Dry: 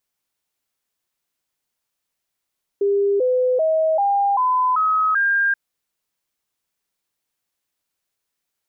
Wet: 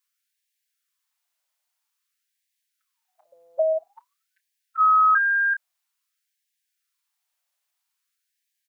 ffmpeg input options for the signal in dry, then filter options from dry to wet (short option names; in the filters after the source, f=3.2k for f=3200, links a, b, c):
-f lavfi -i "aevalsrc='0.178*clip(min(mod(t,0.39),0.39-mod(t,0.39))/0.005,0,1)*sin(2*PI*401*pow(2,floor(t/0.39)/3)*mod(t,0.39))':d=2.73:s=44100"
-filter_complex "[0:a]asplit=2[a][b];[b]adelay=29,volume=-11dB[c];[a][c]amix=inputs=2:normalize=0,afftfilt=real='re*gte(b*sr/1024,520*pow(1600/520,0.5+0.5*sin(2*PI*0.5*pts/sr)))':imag='im*gte(b*sr/1024,520*pow(1600/520,0.5+0.5*sin(2*PI*0.5*pts/sr)))':win_size=1024:overlap=0.75"